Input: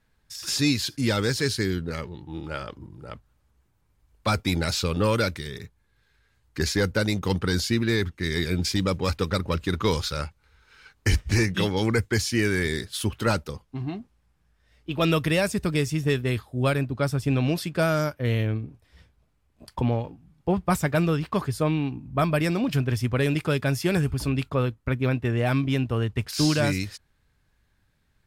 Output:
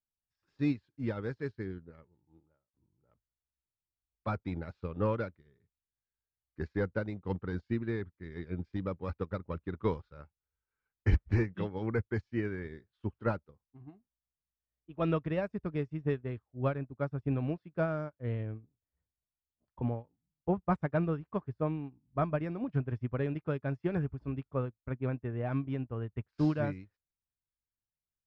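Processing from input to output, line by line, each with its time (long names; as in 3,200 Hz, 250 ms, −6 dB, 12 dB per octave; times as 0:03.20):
0:02.25–0:02.74: fade out and dull
whole clip: low-pass filter 1,400 Hz 12 dB per octave; expander for the loud parts 2.5 to 1, over −38 dBFS; level −2 dB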